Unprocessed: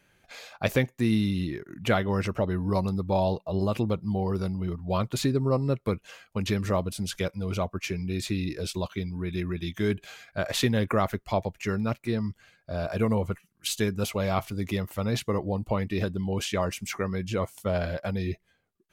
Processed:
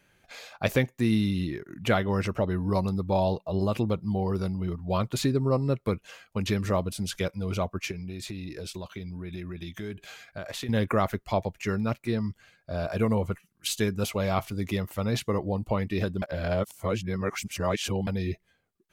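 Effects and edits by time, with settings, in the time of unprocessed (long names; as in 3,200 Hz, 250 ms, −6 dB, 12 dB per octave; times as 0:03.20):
0:07.91–0:10.69: downward compressor 4 to 1, threshold −34 dBFS
0:16.22–0:18.07: reverse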